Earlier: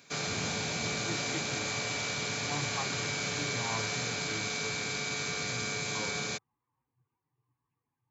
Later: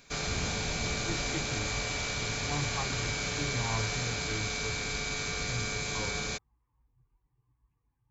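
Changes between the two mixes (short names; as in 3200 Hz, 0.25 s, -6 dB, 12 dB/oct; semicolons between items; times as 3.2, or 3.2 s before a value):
speech: add low shelf 230 Hz +6 dB; master: remove HPF 110 Hz 24 dB/oct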